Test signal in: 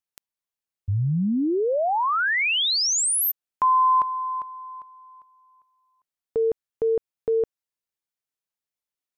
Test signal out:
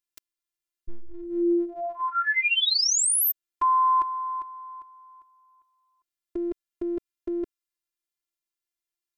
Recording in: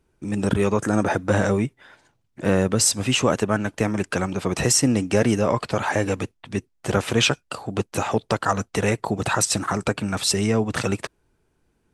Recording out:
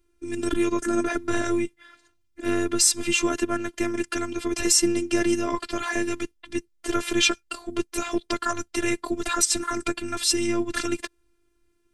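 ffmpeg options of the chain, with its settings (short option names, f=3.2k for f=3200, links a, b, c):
-af "afftfilt=real='hypot(re,im)*cos(PI*b)':imag='0':win_size=512:overlap=0.75,equalizer=f=760:t=o:w=0.96:g=-10.5,volume=3.5dB"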